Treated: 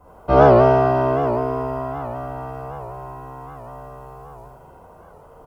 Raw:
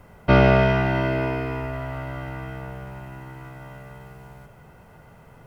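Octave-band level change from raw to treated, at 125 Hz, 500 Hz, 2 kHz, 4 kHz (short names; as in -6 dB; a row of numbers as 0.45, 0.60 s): -1.0 dB, +7.0 dB, -5.5 dB, n/a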